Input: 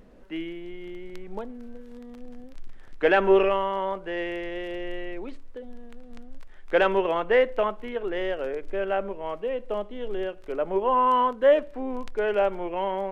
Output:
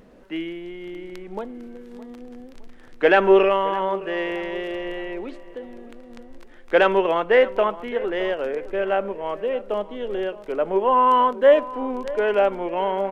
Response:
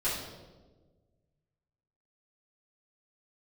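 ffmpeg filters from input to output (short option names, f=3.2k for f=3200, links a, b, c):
-filter_complex "[0:a]lowshelf=f=74:g=-10.5,asplit=2[a][b];[b]adelay=614,lowpass=f=2k:p=1,volume=-16.5dB,asplit=2[c][d];[d]adelay=614,lowpass=f=2k:p=1,volume=0.44,asplit=2[e][f];[f]adelay=614,lowpass=f=2k:p=1,volume=0.44,asplit=2[g][h];[h]adelay=614,lowpass=f=2k:p=1,volume=0.44[i];[a][c][e][g][i]amix=inputs=5:normalize=0,volume=4.5dB"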